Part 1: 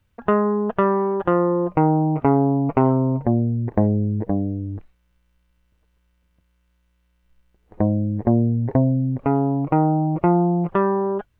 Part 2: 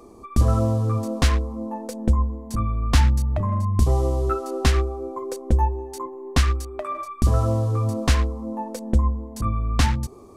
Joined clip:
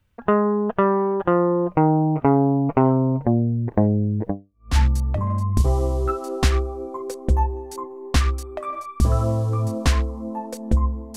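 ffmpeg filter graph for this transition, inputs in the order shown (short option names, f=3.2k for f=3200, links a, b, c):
-filter_complex "[0:a]apad=whole_dur=11.16,atrim=end=11.16,atrim=end=4.76,asetpts=PTS-STARTPTS[a];[1:a]atrim=start=2.52:end=9.38,asetpts=PTS-STARTPTS[b];[a][b]acrossfade=d=0.46:c1=exp:c2=exp"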